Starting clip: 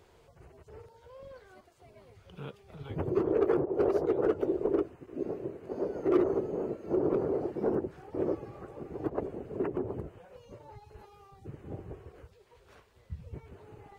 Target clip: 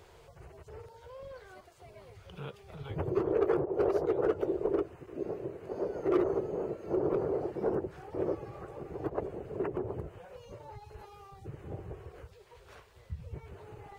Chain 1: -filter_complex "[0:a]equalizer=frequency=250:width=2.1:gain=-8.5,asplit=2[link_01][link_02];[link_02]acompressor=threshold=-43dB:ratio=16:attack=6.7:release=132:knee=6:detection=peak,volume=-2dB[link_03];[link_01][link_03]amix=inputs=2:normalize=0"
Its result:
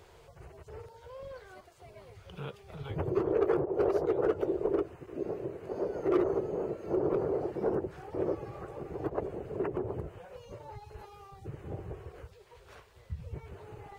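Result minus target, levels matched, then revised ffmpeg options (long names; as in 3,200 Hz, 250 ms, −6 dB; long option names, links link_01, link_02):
downward compressor: peak gain reduction −7.5 dB
-filter_complex "[0:a]equalizer=frequency=250:width=2.1:gain=-8.5,asplit=2[link_01][link_02];[link_02]acompressor=threshold=-51dB:ratio=16:attack=6.7:release=132:knee=6:detection=peak,volume=-2dB[link_03];[link_01][link_03]amix=inputs=2:normalize=0"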